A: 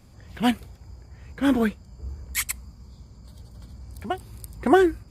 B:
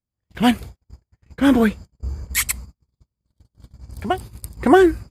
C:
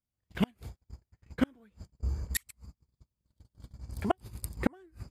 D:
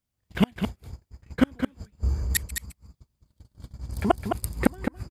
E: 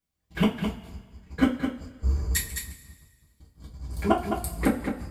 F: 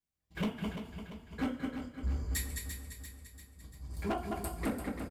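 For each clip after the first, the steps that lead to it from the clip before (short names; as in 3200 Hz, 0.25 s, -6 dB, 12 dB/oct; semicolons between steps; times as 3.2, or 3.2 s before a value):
gate -39 dBFS, range -44 dB; in parallel at -0.5 dB: limiter -17 dBFS, peak gain reduction 11 dB; on the sum: gain +2 dB
flipped gate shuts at -8 dBFS, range -39 dB; gain -4.5 dB
echo 0.211 s -7 dB; gain +7 dB
two-slope reverb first 0.25 s, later 1.6 s, from -19 dB, DRR -5.5 dB; gain -6 dB
overloaded stage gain 20 dB; on a send: feedback echo 0.343 s, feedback 52%, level -8.5 dB; on the sum: gain -8.5 dB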